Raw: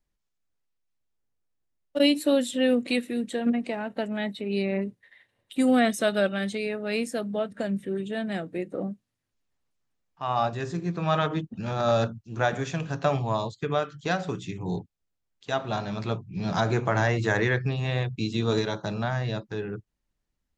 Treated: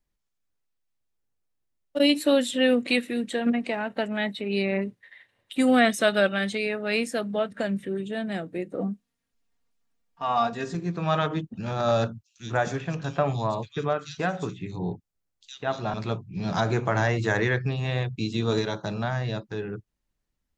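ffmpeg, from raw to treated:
-filter_complex "[0:a]asettb=1/sr,asplit=3[s0][s1][s2];[s0]atrim=end=2.094[s3];[s1]atrim=start=2.09:end=7.88,asetpts=PTS-STARTPTS,afade=t=in:d=0.004:c=qsin,afade=t=out:st=5.786:d=0.004:c=qsin,equalizer=f=2000:w=0.42:g=5.5[s4];[s2]atrim=start=7.876[s5];[s3][s4]acrossfade=d=0.004:c1=hsin:c2=qsin[s6];[s6][s5]acrossfade=d=0.004:c1=qsin:c2=hsin,asettb=1/sr,asplit=3[s7][s8][s9];[s7]atrim=end=8.794[s10];[s8]atrim=start=8.79:end=10.75,asetpts=PTS-STARTPTS,afade=t=in:d=0.004:c=qsin,afade=t=out:st=1.956:d=0.004:c=qsin,aecho=1:1:4.3:0.7,atrim=end_sample=86436[s11];[s9]atrim=start=10.746[s12];[s10][s11]acrossfade=d=0.004:c1=hsin:c2=qsin[s13];[s13][s12]acrossfade=d=0.004:c1=qsin:c2=hsin,asettb=1/sr,asplit=3[s14][s15][s16];[s14]atrim=end=12.234[s17];[s15]atrim=start=12.23:end=15.94,asetpts=PTS-STARTPTS,afade=t=in:d=0.004:c=qsin,afade=t=out:st=3.706:d=0.004:c=qsin,acrossover=split=3200[s18][s19];[s18]adelay=140[s20];[s20][s19]amix=inputs=2:normalize=0,atrim=end_sample=163611[s21];[s16]atrim=start=15.936[s22];[s17][s21]acrossfade=d=0.004:c1=hsin:c2=qsin[s23];[s23][s22]acrossfade=d=0.004:c1=qsin:c2=hsin"

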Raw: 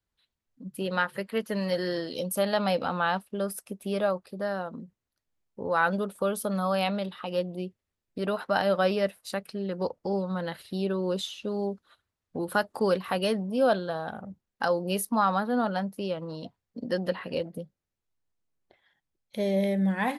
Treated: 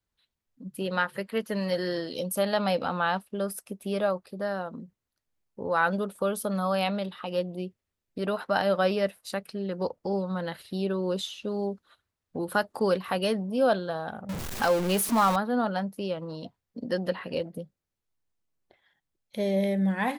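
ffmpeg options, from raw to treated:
-filter_complex "[0:a]asettb=1/sr,asplit=3[s0][s1][s2];[s0]atrim=end=14.294[s3];[s1]atrim=start=14.29:end=15.36,asetpts=PTS-STARTPTS,afade=t=in:d=0.004:c=qsin,afade=t=out:st=1.066:d=0.004:c=qsin,aeval=exprs='val(0)+0.5*0.0422*sgn(val(0))':c=same[s4];[s2]atrim=start=15.356[s5];[s3][s4]acrossfade=d=0.004:c1=hsin:c2=qsin[s6];[s6][s5]acrossfade=d=0.004:c1=qsin:c2=hsin"

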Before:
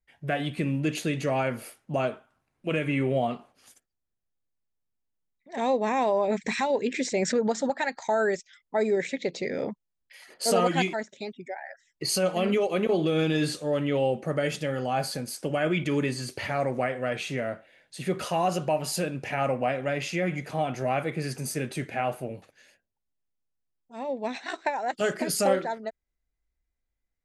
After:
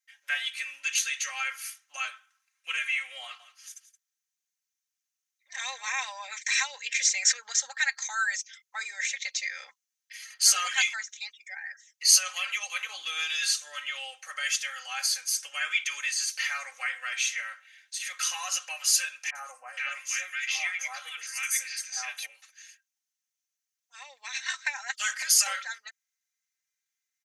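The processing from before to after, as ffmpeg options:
-filter_complex "[0:a]asettb=1/sr,asplit=3[s0][s1][s2];[s0]atrim=end=3.224[s3];[s1]atrim=start=3.22:end=6.05,asetpts=PTS-STARTPTS,afade=t=in:d=0.004:c=qsin,afade=t=out:st=2.826:d=0.004:c=qsin,aecho=1:1:173:0.188,atrim=end_sample=124803[s4];[s2]atrim=start=6.046[s5];[s3][s4]acrossfade=d=0.004:c1=hsin:c2=qsin[s6];[s6][s5]acrossfade=d=0.004:c1=qsin:c2=hsin,asettb=1/sr,asplit=3[s7][s8][s9];[s7]atrim=end=19.304[s10];[s8]atrim=start=19.3:end=22.26,asetpts=PTS-STARTPTS,afade=t=in:d=0.004:c=qsin,afade=t=out:st=2.956:d=0.004:c=qsin,acrossover=split=1300|5600[s11][s12][s13];[s13]adelay=50[s14];[s12]adelay=470[s15];[s11][s15][s14]amix=inputs=3:normalize=0,atrim=end_sample=130536[s16];[s9]atrim=start=22.256[s17];[s10][s16]acrossfade=d=0.004:c1=hsin:c2=qsin[s18];[s18][s17]acrossfade=d=0.004:c1=qsin:c2=hsin,highpass=f=1500:w=0.5412,highpass=f=1500:w=1.3066,equalizer=f=6200:t=o:w=0.33:g=12,aecho=1:1:3.8:0.78,volume=1.5"

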